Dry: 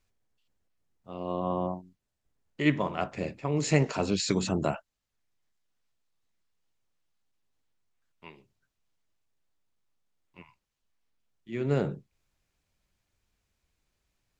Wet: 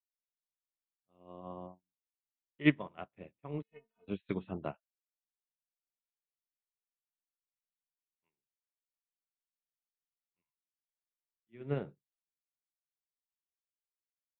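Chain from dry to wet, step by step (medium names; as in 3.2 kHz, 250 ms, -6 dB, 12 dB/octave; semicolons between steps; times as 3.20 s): 3.62–4.08 s: inharmonic resonator 220 Hz, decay 0.22 s, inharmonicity 0.008; resampled via 8 kHz; upward expansion 2.5:1, over -47 dBFS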